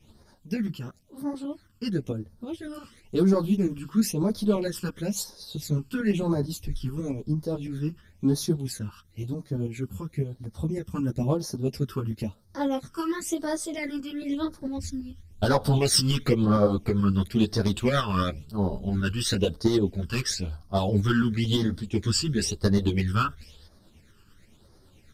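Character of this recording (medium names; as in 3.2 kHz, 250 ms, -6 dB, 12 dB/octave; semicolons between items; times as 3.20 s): phasing stages 12, 0.98 Hz, lowest notch 650–2700 Hz; tremolo saw up 9 Hz, depth 50%; a shimmering, thickened sound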